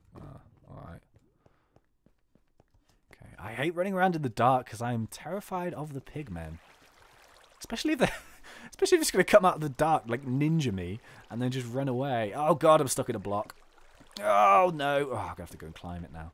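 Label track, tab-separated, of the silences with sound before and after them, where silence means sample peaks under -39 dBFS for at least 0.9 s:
0.960000	3.130000	silence
6.560000	7.610000	silence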